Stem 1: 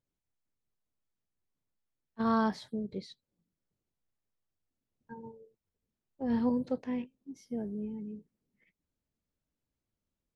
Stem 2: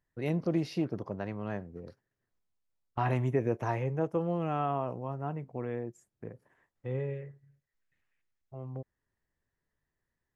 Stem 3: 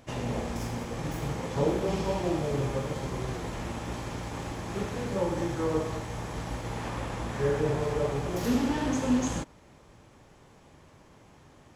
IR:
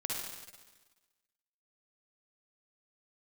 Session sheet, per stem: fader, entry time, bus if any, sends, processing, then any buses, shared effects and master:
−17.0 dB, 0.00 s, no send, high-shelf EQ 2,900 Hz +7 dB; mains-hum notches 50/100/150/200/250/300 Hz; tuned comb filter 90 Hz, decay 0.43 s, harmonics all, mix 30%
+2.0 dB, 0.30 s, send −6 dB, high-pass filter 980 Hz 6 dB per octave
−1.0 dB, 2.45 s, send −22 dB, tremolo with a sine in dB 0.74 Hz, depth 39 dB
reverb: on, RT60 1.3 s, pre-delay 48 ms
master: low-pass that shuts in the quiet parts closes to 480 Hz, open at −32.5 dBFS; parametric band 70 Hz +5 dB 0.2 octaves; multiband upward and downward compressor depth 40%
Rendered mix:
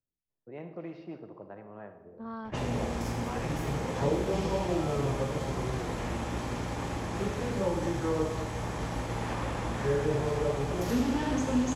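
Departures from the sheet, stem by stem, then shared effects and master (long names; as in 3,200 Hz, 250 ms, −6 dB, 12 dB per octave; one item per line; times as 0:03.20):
stem 1: missing tuned comb filter 90 Hz, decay 0.43 s, harmonics all, mix 30%
stem 2 +2.0 dB → −9.5 dB
stem 3: missing tremolo with a sine in dB 0.74 Hz, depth 39 dB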